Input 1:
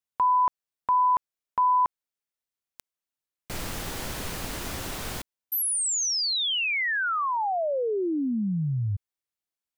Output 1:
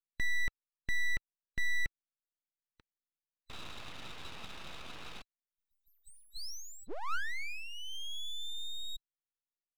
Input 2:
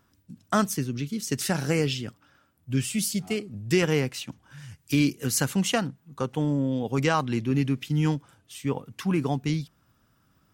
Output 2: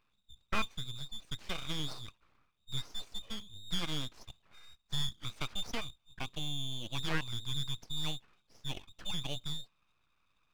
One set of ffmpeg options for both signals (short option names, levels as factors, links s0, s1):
-af "afftfilt=real='real(if(between(b,1,1012),(2*floor((b-1)/92)+1)*92-b,b),0)':imag='imag(if(between(b,1,1012),(2*floor((b-1)/92)+1)*92-b,b),0)*if(between(b,1,1012),-1,1)':win_size=2048:overlap=0.75,highpass=f=160:w=0.5412,highpass=f=160:w=1.3066,equalizer=f=280:t=q:w=4:g=-4,equalizer=f=400:t=q:w=4:g=-4,equalizer=f=680:t=q:w=4:g=6,equalizer=f=1400:t=q:w=4:g=-7,equalizer=f=2100:t=q:w=4:g=-4,lowpass=f=2600:w=0.5412,lowpass=f=2600:w=1.3066,aeval=exprs='abs(val(0))':c=same,volume=0.473"